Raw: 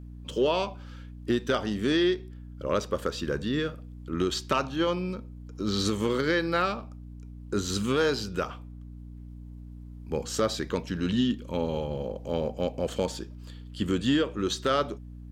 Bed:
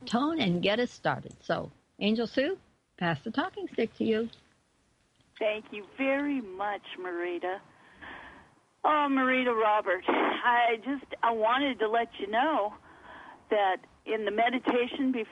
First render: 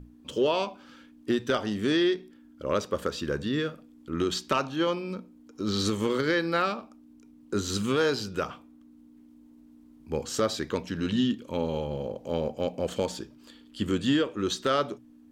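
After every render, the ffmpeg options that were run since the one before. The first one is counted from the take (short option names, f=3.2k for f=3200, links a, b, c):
-af "bandreject=f=60:t=h:w=6,bandreject=f=120:t=h:w=6,bandreject=f=180:t=h:w=6"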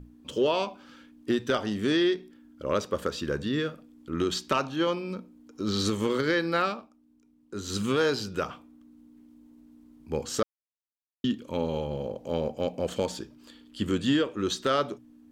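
-filter_complex "[0:a]asplit=5[a][b][c][d][e];[a]atrim=end=6.92,asetpts=PTS-STARTPTS,afade=t=out:st=6.65:d=0.27:silence=0.354813[f];[b]atrim=start=6.92:end=7.55,asetpts=PTS-STARTPTS,volume=-9dB[g];[c]atrim=start=7.55:end=10.43,asetpts=PTS-STARTPTS,afade=t=in:d=0.27:silence=0.354813,afade=t=out:st=2.876:d=0.004:c=hsin[h];[d]atrim=start=10.43:end=11.24,asetpts=PTS-STARTPTS,volume=0[i];[e]atrim=start=11.24,asetpts=PTS-STARTPTS,afade=t=in:d=0.004:c=hsin[j];[f][g][h][i][j]concat=n=5:v=0:a=1"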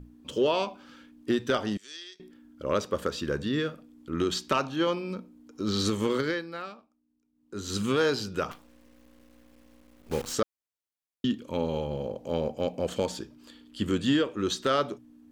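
-filter_complex "[0:a]asettb=1/sr,asplit=3[a][b][c];[a]atrim=end=1.774[d];[b]atrim=start=1.77:end=2.2,asetpts=PTS-STARTPTS,afade=t=in:d=0.004:c=qsin,afade=t=out:st=0.426:d=0.004:c=qsin,bandpass=f=6.4k:t=q:w=2.1[e];[c]atrim=start=2.196[f];[d][e]acrossfade=d=0.004:c1=hsin:c2=qsin[g];[g][f]acrossfade=d=0.004:c1=qsin:c2=hsin,asettb=1/sr,asplit=3[h][i][j];[h]atrim=end=8.514[k];[i]atrim=start=8.51:end=10.34,asetpts=PTS-STARTPTS,afade=t=in:d=0.004:c=qsin,afade=t=out:st=1.826:d=0.004:c=qsin,acrusher=bits=7:dc=4:mix=0:aa=0.000001[l];[j]atrim=start=10.336[m];[k][l]acrossfade=d=0.004:c1=hsin:c2=qsin[n];[n][m]acrossfade=d=0.004:c1=qsin:c2=hsin,asplit=3[o][p][q];[o]atrim=end=6.46,asetpts=PTS-STARTPTS,afade=t=out:st=6.17:d=0.29:silence=0.251189[r];[p]atrim=start=6.46:end=7.32,asetpts=PTS-STARTPTS,volume=-12dB[s];[q]atrim=start=7.32,asetpts=PTS-STARTPTS,afade=t=in:d=0.29:silence=0.251189[t];[r][s][t]concat=n=3:v=0:a=1"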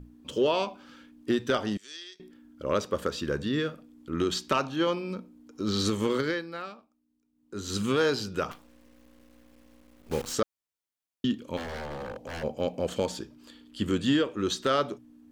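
-filter_complex "[0:a]asplit=3[a][b][c];[a]afade=t=out:st=11.56:d=0.02[d];[b]aeval=exprs='0.0266*(abs(mod(val(0)/0.0266+3,4)-2)-1)':c=same,afade=t=in:st=11.56:d=0.02,afade=t=out:st=12.42:d=0.02[e];[c]afade=t=in:st=12.42:d=0.02[f];[d][e][f]amix=inputs=3:normalize=0"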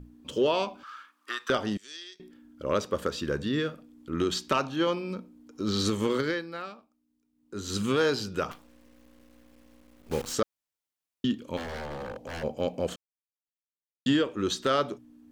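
-filter_complex "[0:a]asettb=1/sr,asplit=3[a][b][c];[a]atrim=end=0.834[d];[b]atrim=start=0.83:end=1.5,asetpts=PTS-STARTPTS,afade=t=in:d=0.004:c=qsin,afade=t=out:st=0.666:d=0.004:c=qsin,highpass=f=1.2k:t=q:w=8.3[e];[c]atrim=start=1.496[f];[d][e]acrossfade=d=0.004:c1=hsin:c2=qsin[g];[g][f]acrossfade=d=0.004:c1=qsin:c2=hsin,asplit=3[h][i][j];[h]atrim=end=12.96,asetpts=PTS-STARTPTS,afade=t=out:st=12.956:d=0.004:c=hsin[k];[i]atrim=start=12.96:end=14.06,asetpts=PTS-STARTPTS,volume=0[l];[j]atrim=start=14.06,asetpts=PTS-STARTPTS,afade=t=in:d=0.004:c=hsin[m];[k][l][m]concat=n=3:v=0:a=1"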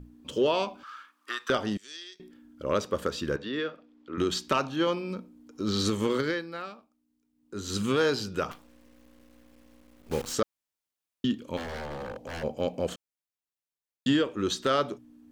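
-filter_complex "[0:a]asettb=1/sr,asplit=3[a][b][c];[a]atrim=end=3.364[d];[b]atrim=start=3.36:end=4.18,asetpts=PTS-STARTPTS,afade=t=in:d=0.004:c=qsin,afade=t=out:st=0.816:d=0.004:c=qsin,acrossover=split=290 5000:gain=0.178 1 0.0708[e][f][g];[e][f][g]amix=inputs=3:normalize=0[h];[c]atrim=start=4.176[i];[d][h]acrossfade=d=0.004:c1=hsin:c2=qsin[j];[j][i]acrossfade=d=0.004:c1=qsin:c2=hsin"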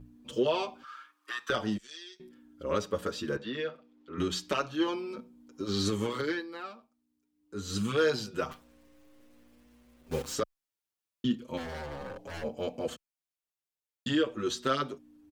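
-filter_complex "[0:a]asplit=2[a][b];[b]adelay=6.6,afreqshift=0.64[c];[a][c]amix=inputs=2:normalize=1"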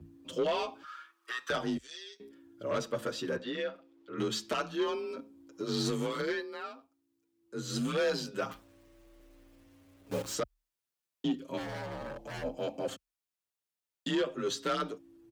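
-af "asoftclip=type=tanh:threshold=-24dB,afreqshift=36"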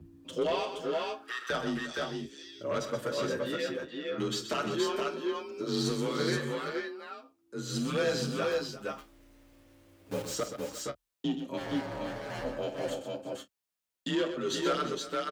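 -filter_complex "[0:a]asplit=2[a][b];[b]adelay=30,volume=-13.5dB[c];[a][c]amix=inputs=2:normalize=0,aecho=1:1:48|126|347|469|483:0.211|0.335|0.168|0.631|0.376"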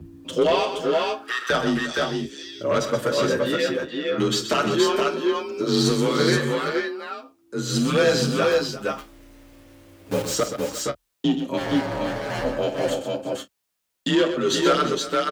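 -af "volume=10.5dB"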